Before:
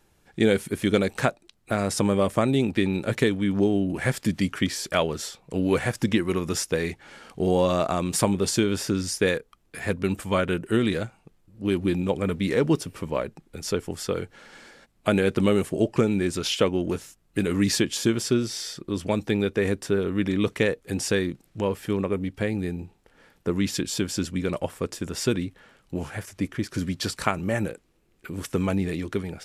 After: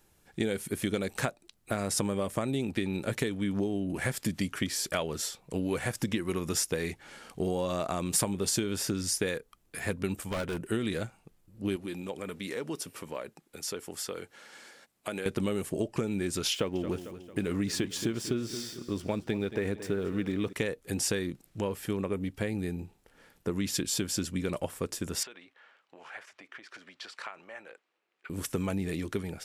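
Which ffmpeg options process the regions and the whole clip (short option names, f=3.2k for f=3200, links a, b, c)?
-filter_complex "[0:a]asettb=1/sr,asplit=3[a][b][c];[a]atrim=end=10.154[d];[b]atrim=start=10.15:end=10.6,asetpts=PTS-STARTPTS,afade=t=in:d=0.004:c=qsin,afade=t=out:st=0.446:d=0.004:c=qsin,volume=24dB,asoftclip=hard,volume=-24dB,tremolo=f=79:d=0.462[e];[c]atrim=start=10.596[f];[d][e]acrossfade=d=0.004:c1=hsin:c2=qsin[g];[g][f]acrossfade=d=0.004:c1=qsin:c2=hsin,asettb=1/sr,asplit=3[h][i][j];[h]atrim=end=11.764[k];[i]atrim=start=11.76:end=15.26,asetpts=PTS-STARTPTS,afade=t=in:d=0.004:c=qsin,afade=t=out:st=3.496:d=0.004:c=qsin,highpass=f=400:p=1,acompressor=threshold=-33dB:ratio=2:attack=3.2:release=140:knee=1:detection=peak[l];[j]atrim=start=15.256[m];[k][l]acrossfade=d=0.004:c1=hsin:c2=qsin[n];[n][m]acrossfade=d=0.004:c1=qsin:c2=hsin,asettb=1/sr,asplit=3[o][p][q];[o]atrim=end=16.534[r];[p]atrim=start=16.53:end=20.53,asetpts=PTS-STARTPTS,afade=t=in:d=0.004:c=qsin,afade=t=out:st=3.996:d=0.004:c=qsin,aemphasis=mode=reproduction:type=cd,aeval=exprs='sgn(val(0))*max(abs(val(0))-0.00299,0)':c=same,aecho=1:1:224|448|672|896:0.178|0.0854|0.041|0.0197,atrim=end_sample=176400[s];[q]atrim=start=20.526[t];[r][s]acrossfade=d=0.004:c1=hsin:c2=qsin[u];[u][t]acrossfade=d=0.004:c1=qsin:c2=hsin,asettb=1/sr,asplit=3[v][w][x];[v]atrim=end=25.234[y];[w]atrim=start=25.23:end=28.3,asetpts=PTS-STARTPTS,afade=t=in:d=0.004:c=qsin,afade=t=out:st=3.066:d=0.004:c=qsin,acompressor=threshold=-29dB:ratio=8:attack=3.2:release=140:knee=1:detection=peak,highpass=770,lowpass=3k[z];[x]atrim=start=28.296[aa];[y][z]acrossfade=d=0.004:c1=hsin:c2=qsin[ab];[ab][aa]acrossfade=d=0.004:c1=qsin:c2=hsin,acompressor=threshold=-23dB:ratio=6,highshelf=f=7.6k:g=9,volume=-3.5dB"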